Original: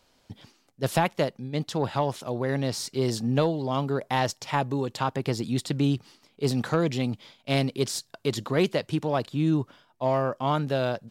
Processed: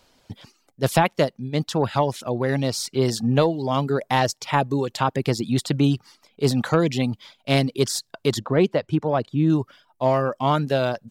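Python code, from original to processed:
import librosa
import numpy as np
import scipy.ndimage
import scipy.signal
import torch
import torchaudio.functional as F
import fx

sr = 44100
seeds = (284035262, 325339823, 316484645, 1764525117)

y = fx.lowpass(x, sr, hz=1500.0, slope=6, at=(8.39, 9.5))
y = fx.dereverb_blind(y, sr, rt60_s=0.52)
y = F.gain(torch.from_numpy(y), 5.5).numpy()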